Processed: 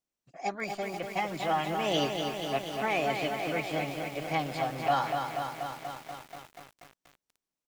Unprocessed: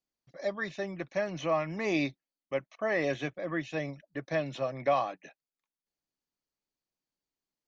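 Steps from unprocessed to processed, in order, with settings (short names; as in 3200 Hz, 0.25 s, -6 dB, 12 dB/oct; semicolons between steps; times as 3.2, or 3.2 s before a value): formant shift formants +4 st; feedback echo 0.419 s, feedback 21%, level -22 dB; lo-fi delay 0.241 s, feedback 80%, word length 8-bit, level -5 dB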